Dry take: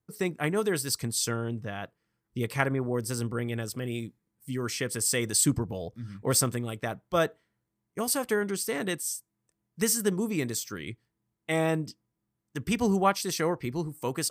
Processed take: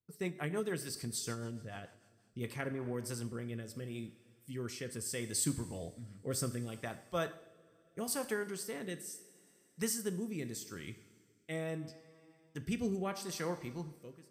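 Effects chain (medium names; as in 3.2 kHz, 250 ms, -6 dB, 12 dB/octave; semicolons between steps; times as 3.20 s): fade out at the end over 0.82 s; two-slope reverb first 0.62 s, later 2.8 s, from -16 dB, DRR 8.5 dB; rotary cabinet horn 6.7 Hz, later 0.75 Hz, at 1.94 s; trim -8 dB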